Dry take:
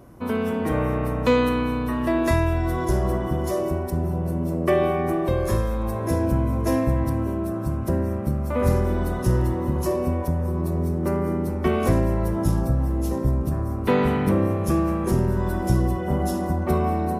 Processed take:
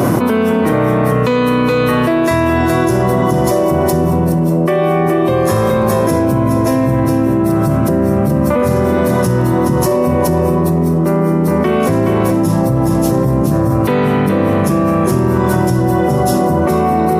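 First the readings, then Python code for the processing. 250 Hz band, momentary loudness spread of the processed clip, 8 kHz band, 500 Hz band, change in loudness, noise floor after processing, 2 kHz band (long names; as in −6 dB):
+11.0 dB, 0 LU, +12.5 dB, +11.0 dB, +10.0 dB, −14 dBFS, +11.0 dB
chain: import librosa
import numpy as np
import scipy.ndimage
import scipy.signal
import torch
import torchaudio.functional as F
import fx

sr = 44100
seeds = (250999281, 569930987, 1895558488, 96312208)

p1 = scipy.signal.sosfilt(scipy.signal.butter(4, 110.0, 'highpass', fs=sr, output='sos'), x)
p2 = p1 + fx.echo_single(p1, sr, ms=420, db=-7.0, dry=0)
p3 = fx.env_flatten(p2, sr, amount_pct=100)
y = F.gain(torch.from_numpy(p3), 2.5).numpy()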